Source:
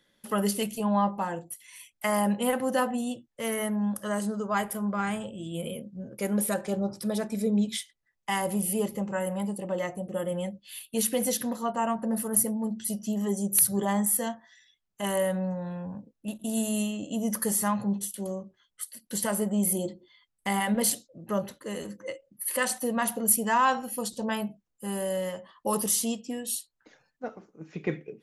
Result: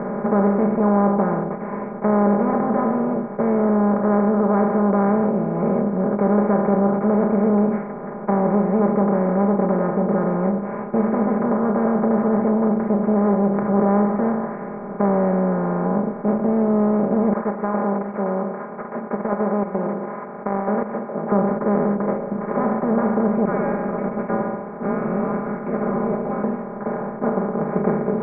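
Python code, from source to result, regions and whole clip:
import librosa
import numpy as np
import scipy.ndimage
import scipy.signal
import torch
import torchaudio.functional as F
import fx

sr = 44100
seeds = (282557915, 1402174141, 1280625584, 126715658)

y = fx.chain(x, sr, fx.highpass(hz=1300.0, slope=12),
    fx.over_compress(threshold_db=-40.0, ratio=-1.0), at=(17.33, 21.32))
y = fx.chain(y, sr, fx.highpass(hz=810.0, slope=12),
    fx.echo_single(ms=134, db=-21.5),
    fx.freq_invert(carrier_hz=3200), at=(23.45, 26.44))
y = fx.bin_compress(y, sr, power=0.2)
y = scipy.signal.sosfilt(scipy.signal.bessel(8, 800.0, 'lowpass', norm='mag', fs=sr, output='sos'), y)
y = y + 0.66 * np.pad(y, (int(4.9 * sr / 1000.0), 0))[:len(y)]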